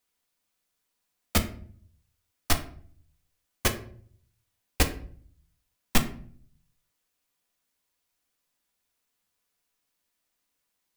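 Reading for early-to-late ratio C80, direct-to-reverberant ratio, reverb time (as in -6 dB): 16.0 dB, 4.5 dB, 0.50 s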